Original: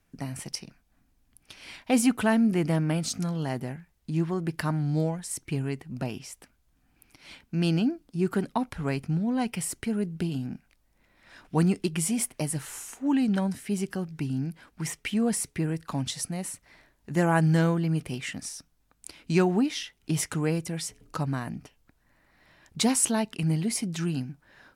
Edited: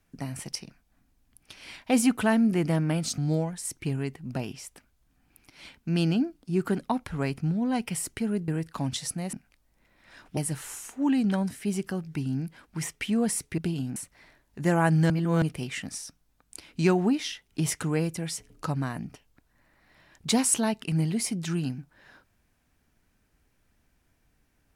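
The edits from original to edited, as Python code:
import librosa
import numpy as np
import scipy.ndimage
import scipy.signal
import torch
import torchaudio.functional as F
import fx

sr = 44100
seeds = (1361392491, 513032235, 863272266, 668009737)

y = fx.edit(x, sr, fx.cut(start_s=3.18, length_s=1.66),
    fx.swap(start_s=10.14, length_s=0.38, other_s=15.62, other_length_s=0.85),
    fx.cut(start_s=11.56, length_s=0.85),
    fx.reverse_span(start_s=17.61, length_s=0.32), tone=tone)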